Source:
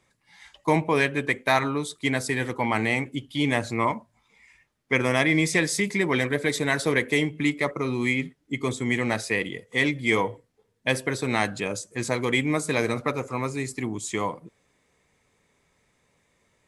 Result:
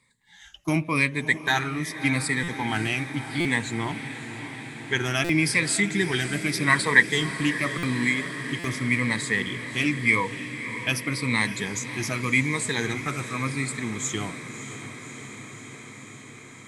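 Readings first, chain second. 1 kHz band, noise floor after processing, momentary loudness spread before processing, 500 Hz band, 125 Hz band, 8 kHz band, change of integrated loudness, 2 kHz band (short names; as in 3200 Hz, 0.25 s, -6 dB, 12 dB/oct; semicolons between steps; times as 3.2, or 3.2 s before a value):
-2.5 dB, -45 dBFS, 8 LU, -6.5 dB, +1.5 dB, +3.0 dB, +0.5 dB, +2.5 dB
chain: moving spectral ripple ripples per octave 0.97, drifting -0.88 Hz, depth 14 dB; spectral gain 6.65–7.03, 600–2000 Hz +9 dB; bell 590 Hz -12 dB 1.5 oct; diffused feedback echo 0.596 s, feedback 76%, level -12 dB; stuck buffer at 2.43/3.4/5.24/7.78/8.59, samples 256, times 8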